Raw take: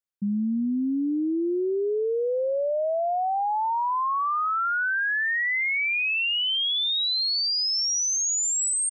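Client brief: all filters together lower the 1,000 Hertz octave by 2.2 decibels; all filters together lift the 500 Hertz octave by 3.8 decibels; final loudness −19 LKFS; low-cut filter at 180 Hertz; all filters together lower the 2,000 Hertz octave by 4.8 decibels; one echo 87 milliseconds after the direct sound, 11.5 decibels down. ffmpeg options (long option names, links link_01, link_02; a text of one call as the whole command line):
ffmpeg -i in.wav -af "highpass=180,equalizer=frequency=500:width_type=o:gain=6,equalizer=frequency=1000:width_type=o:gain=-3.5,equalizer=frequency=2000:width_type=o:gain=-5.5,aecho=1:1:87:0.266,volume=5dB" out.wav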